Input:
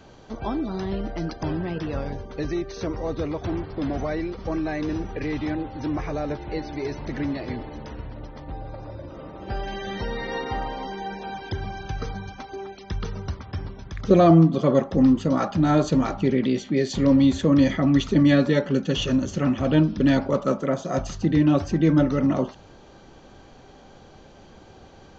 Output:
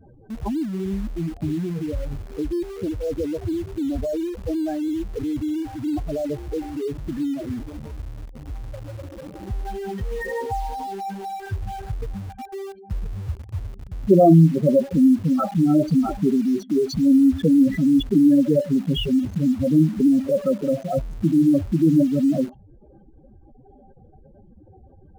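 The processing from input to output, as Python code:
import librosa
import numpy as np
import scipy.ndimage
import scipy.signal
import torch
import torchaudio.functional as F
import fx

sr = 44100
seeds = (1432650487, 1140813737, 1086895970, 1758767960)

p1 = fx.spec_expand(x, sr, power=3.7)
p2 = fx.quant_dither(p1, sr, seeds[0], bits=6, dither='none')
y = p1 + (p2 * librosa.db_to_amplitude(-8.0))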